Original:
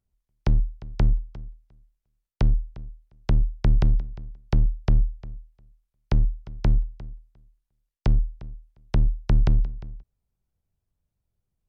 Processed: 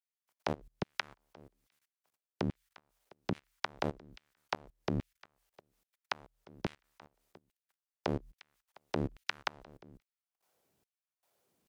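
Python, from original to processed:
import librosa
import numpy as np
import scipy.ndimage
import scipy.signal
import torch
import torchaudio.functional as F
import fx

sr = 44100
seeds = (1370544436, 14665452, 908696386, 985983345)

y = fx.filter_lfo_highpass(x, sr, shape='saw_down', hz=1.2, low_hz=230.0, high_hz=2600.0, q=1.3)
y = fx.level_steps(y, sr, step_db=23)
y = y * 10.0 ** (14.0 / 20.0)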